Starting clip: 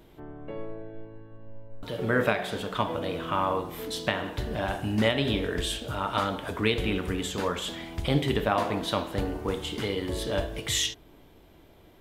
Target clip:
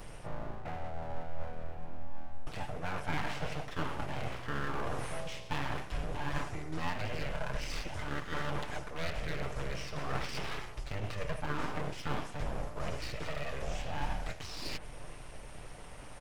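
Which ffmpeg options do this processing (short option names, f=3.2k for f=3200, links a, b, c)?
-filter_complex "[0:a]equalizer=f=7.2k:t=o:w=0.36:g=6,areverse,acompressor=threshold=-40dB:ratio=12,areverse,aecho=1:1:5:0.68,asetrate=32667,aresample=44100,acrossover=split=2500[a][b];[b]acompressor=threshold=-58dB:ratio=4:attack=1:release=60[c];[a][c]amix=inputs=2:normalize=0,acrossover=split=130|4100[d][e][f];[e]aeval=exprs='abs(val(0))':c=same[g];[d][g][f]amix=inputs=3:normalize=0,volume=9dB"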